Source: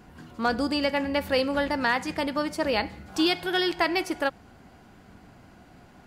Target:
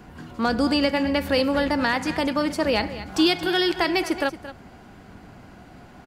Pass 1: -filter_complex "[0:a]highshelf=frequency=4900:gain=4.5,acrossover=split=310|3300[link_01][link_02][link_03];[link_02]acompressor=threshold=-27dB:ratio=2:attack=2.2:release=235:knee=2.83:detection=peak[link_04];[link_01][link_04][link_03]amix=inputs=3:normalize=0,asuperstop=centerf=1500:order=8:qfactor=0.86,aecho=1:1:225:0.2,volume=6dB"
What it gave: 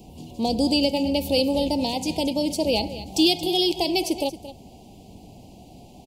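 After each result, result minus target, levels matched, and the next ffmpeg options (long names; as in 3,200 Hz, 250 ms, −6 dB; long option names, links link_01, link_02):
2,000 Hz band −9.5 dB; 8,000 Hz band +6.0 dB
-filter_complex "[0:a]highshelf=frequency=4900:gain=4.5,acrossover=split=310|3300[link_01][link_02][link_03];[link_02]acompressor=threshold=-27dB:ratio=2:attack=2.2:release=235:knee=2.83:detection=peak[link_04];[link_01][link_04][link_03]amix=inputs=3:normalize=0,aecho=1:1:225:0.2,volume=6dB"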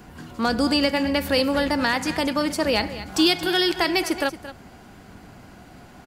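8,000 Hz band +5.0 dB
-filter_complex "[0:a]highshelf=frequency=4900:gain=-3.5,acrossover=split=310|3300[link_01][link_02][link_03];[link_02]acompressor=threshold=-27dB:ratio=2:attack=2.2:release=235:knee=2.83:detection=peak[link_04];[link_01][link_04][link_03]amix=inputs=3:normalize=0,aecho=1:1:225:0.2,volume=6dB"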